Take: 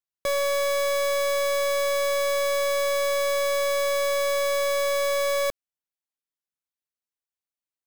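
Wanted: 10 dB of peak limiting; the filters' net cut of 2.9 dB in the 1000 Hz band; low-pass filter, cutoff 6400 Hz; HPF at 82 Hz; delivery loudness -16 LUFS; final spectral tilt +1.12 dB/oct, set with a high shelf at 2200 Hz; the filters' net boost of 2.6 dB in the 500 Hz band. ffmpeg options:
-af "highpass=82,lowpass=6.4k,equalizer=f=500:t=o:g=4,equalizer=f=1k:t=o:g=-5,highshelf=f=2.2k:g=5,volume=15.5dB,alimiter=limit=-11.5dB:level=0:latency=1"

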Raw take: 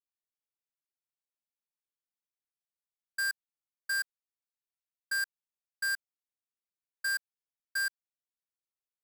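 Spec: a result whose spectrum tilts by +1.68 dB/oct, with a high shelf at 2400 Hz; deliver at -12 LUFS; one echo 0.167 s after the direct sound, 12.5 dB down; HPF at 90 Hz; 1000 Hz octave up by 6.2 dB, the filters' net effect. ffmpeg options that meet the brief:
-af "highpass=90,equalizer=f=1k:t=o:g=9,highshelf=f=2.4k:g=-4.5,aecho=1:1:167:0.237,volume=21dB"

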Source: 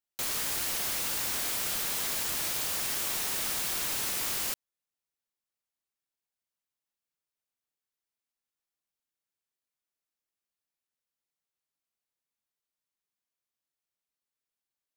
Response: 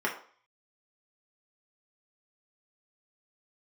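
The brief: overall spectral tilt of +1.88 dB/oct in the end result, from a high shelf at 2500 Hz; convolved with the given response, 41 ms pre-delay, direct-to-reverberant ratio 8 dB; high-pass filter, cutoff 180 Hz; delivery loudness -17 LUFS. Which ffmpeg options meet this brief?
-filter_complex "[0:a]highpass=180,highshelf=f=2.5k:g=8,asplit=2[a][b];[1:a]atrim=start_sample=2205,adelay=41[c];[b][c]afir=irnorm=-1:irlink=0,volume=-17.5dB[d];[a][d]amix=inputs=2:normalize=0,volume=4.5dB"

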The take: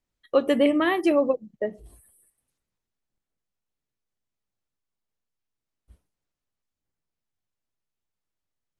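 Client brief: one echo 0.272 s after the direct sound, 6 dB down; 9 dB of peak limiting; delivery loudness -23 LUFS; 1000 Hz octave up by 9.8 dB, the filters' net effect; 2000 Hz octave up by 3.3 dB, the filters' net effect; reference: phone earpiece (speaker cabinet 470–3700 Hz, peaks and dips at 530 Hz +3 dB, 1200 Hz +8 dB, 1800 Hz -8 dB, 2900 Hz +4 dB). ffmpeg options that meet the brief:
-af "equalizer=f=1k:t=o:g=5.5,equalizer=f=2k:t=o:g=7,alimiter=limit=-15dB:level=0:latency=1,highpass=470,equalizer=f=530:t=q:w=4:g=3,equalizer=f=1.2k:t=q:w=4:g=8,equalizer=f=1.8k:t=q:w=4:g=-8,equalizer=f=2.9k:t=q:w=4:g=4,lowpass=f=3.7k:w=0.5412,lowpass=f=3.7k:w=1.3066,aecho=1:1:272:0.501,volume=2dB"

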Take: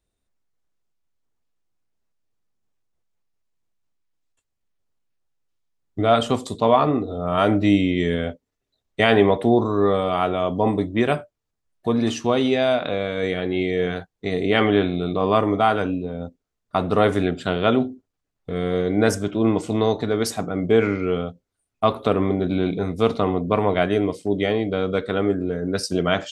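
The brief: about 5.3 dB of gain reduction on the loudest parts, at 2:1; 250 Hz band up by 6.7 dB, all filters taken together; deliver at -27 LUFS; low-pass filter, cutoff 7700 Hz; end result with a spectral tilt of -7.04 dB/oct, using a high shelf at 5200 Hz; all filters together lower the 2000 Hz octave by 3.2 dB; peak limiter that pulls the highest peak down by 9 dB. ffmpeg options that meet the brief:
-af "lowpass=7.7k,equalizer=f=250:t=o:g=8.5,equalizer=f=2k:t=o:g=-3,highshelf=f=5.2k:g=-8.5,acompressor=threshold=-17dB:ratio=2,volume=-3dB,alimiter=limit=-16.5dB:level=0:latency=1"

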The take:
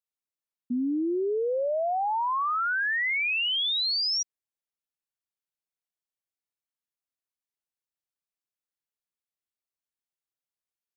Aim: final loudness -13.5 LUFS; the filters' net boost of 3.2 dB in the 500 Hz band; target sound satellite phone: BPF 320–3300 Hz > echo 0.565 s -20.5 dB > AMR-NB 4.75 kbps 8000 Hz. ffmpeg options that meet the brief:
-af "highpass=320,lowpass=3.3k,equalizer=f=500:t=o:g=5,aecho=1:1:565:0.0944,volume=13.5dB" -ar 8000 -c:a libopencore_amrnb -b:a 4750

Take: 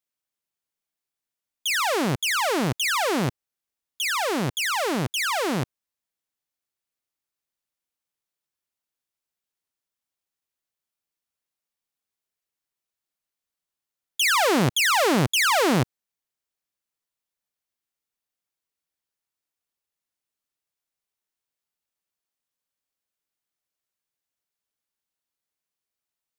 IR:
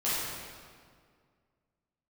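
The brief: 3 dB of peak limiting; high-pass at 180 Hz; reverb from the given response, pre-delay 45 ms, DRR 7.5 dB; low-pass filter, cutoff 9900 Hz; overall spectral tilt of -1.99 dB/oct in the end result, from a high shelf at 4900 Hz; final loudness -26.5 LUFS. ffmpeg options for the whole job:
-filter_complex "[0:a]highpass=180,lowpass=9.9k,highshelf=f=4.9k:g=5,alimiter=limit=-10dB:level=0:latency=1,asplit=2[a][b];[1:a]atrim=start_sample=2205,adelay=45[c];[b][c]afir=irnorm=-1:irlink=0,volume=-17dB[d];[a][d]amix=inputs=2:normalize=0,volume=-5dB"

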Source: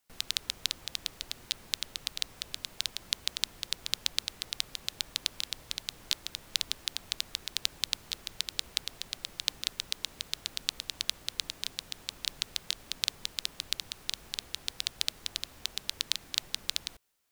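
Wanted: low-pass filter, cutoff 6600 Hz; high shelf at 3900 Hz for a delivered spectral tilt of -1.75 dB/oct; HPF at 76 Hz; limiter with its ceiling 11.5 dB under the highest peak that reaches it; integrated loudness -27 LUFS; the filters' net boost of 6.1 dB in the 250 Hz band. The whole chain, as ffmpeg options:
-af "highpass=76,lowpass=6.6k,equalizer=f=250:t=o:g=8,highshelf=f=3.9k:g=-3.5,volume=17dB,alimiter=limit=-1.5dB:level=0:latency=1"

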